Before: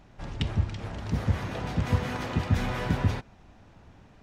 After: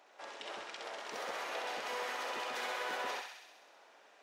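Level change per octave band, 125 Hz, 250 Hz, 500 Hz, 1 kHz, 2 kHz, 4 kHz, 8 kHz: under -40 dB, -24.0 dB, -5.0 dB, -2.5 dB, -2.0 dB, -2.0 dB, -0.5 dB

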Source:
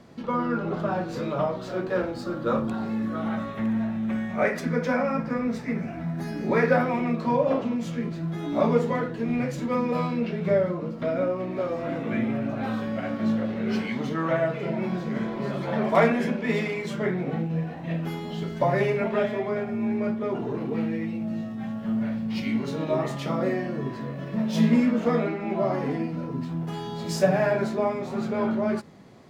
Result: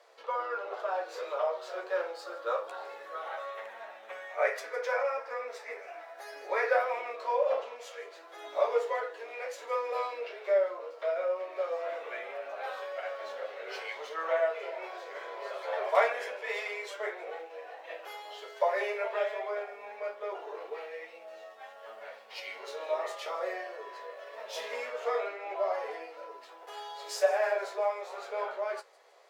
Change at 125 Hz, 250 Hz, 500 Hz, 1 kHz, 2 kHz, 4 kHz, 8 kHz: under -40 dB, under -30 dB, -5.5 dB, -4.0 dB, -3.5 dB, -4.0 dB, no reading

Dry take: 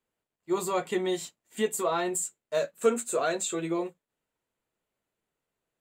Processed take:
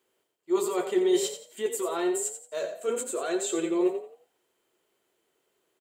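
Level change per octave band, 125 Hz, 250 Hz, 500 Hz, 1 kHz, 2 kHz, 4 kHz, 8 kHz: -9.5 dB, +3.5 dB, +1.5 dB, -3.5 dB, -3.0 dB, +1.0 dB, +0.5 dB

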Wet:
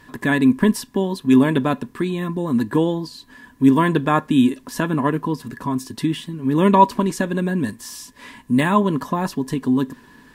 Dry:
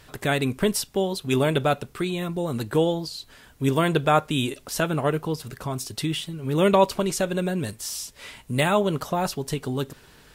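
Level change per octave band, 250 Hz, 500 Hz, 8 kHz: +9.5 dB, 0.0 dB, -3.5 dB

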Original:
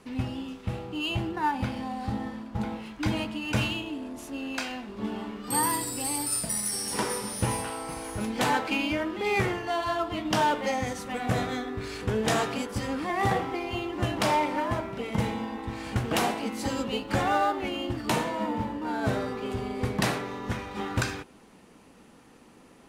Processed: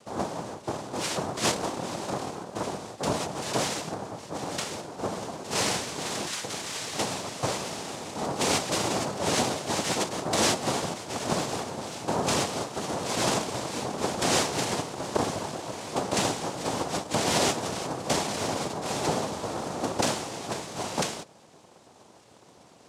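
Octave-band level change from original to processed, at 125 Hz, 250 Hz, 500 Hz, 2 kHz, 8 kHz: -3.5 dB, -2.5 dB, +1.5 dB, -2.0 dB, +3.5 dB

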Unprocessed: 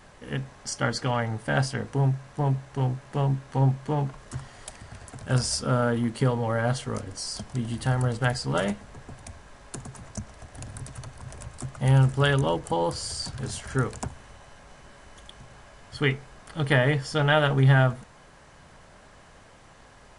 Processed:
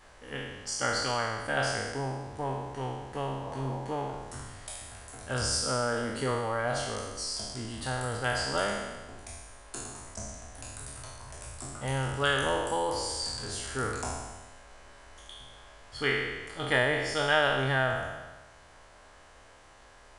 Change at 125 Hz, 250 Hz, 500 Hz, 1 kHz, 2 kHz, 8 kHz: -12.5 dB, -9.0 dB, -3.0 dB, -1.5 dB, 0.0 dB, +1.0 dB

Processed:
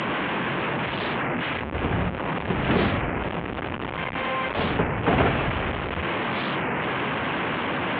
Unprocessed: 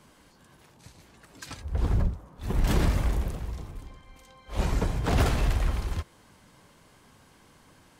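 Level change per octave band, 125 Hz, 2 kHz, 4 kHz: +0.5 dB, +15.0 dB, +10.0 dB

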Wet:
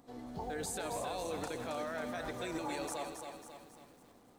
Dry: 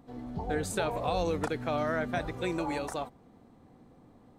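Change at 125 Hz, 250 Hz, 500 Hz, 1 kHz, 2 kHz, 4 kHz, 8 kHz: -12.0 dB, -8.0 dB, -7.5 dB, -6.5 dB, -7.0 dB, -4.0 dB, +0.5 dB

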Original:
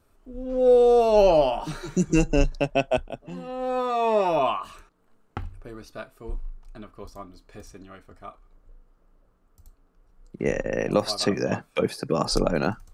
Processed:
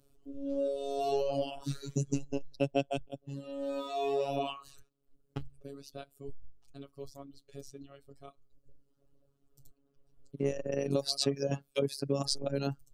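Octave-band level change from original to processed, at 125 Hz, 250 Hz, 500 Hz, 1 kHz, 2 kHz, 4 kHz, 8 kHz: -6.0 dB, -9.0 dB, -12.0 dB, -13.5 dB, -14.0 dB, -5.0 dB, -5.5 dB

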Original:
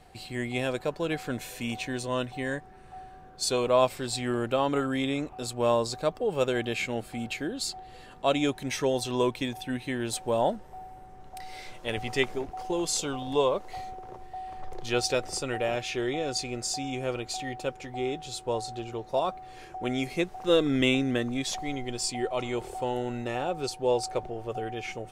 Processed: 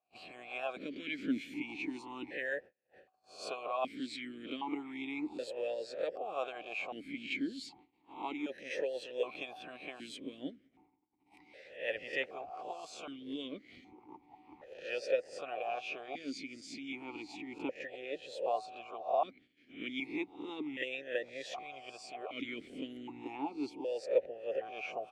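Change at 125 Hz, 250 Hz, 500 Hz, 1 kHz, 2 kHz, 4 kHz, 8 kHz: -25.5 dB, -10.5 dB, -10.0 dB, -9.5 dB, -6.5 dB, -12.5 dB, -22.0 dB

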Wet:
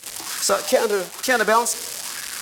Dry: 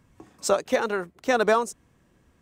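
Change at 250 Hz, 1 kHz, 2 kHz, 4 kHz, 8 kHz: +1.0 dB, +5.0 dB, +6.5 dB, +11.0 dB, +13.0 dB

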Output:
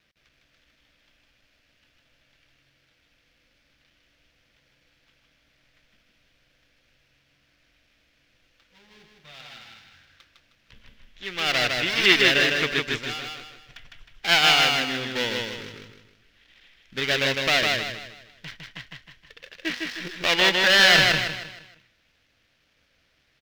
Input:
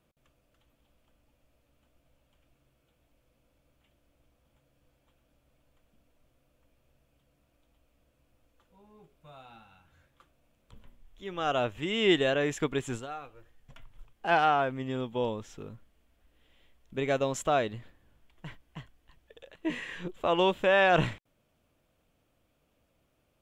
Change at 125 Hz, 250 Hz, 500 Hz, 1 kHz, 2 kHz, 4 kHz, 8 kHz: +1.5 dB, +1.0 dB, 0.0 dB, +1.0 dB, +12.5 dB, +17.0 dB, +13.0 dB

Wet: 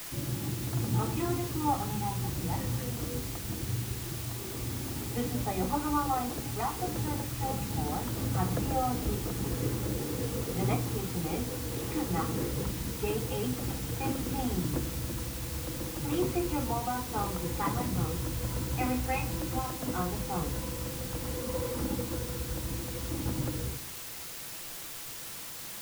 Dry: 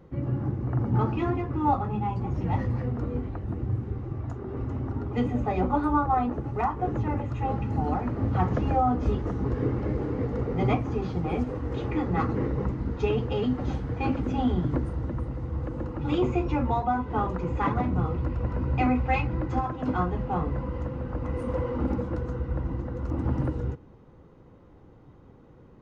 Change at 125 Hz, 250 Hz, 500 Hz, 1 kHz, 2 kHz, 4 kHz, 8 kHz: -5.5 dB, -5.5 dB, -5.0 dB, -6.0 dB, -2.0 dB, +8.0 dB, no reading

